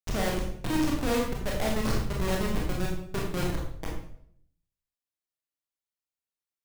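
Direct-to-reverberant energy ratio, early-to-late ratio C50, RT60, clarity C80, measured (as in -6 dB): -2.5 dB, 3.0 dB, 0.65 s, 6.0 dB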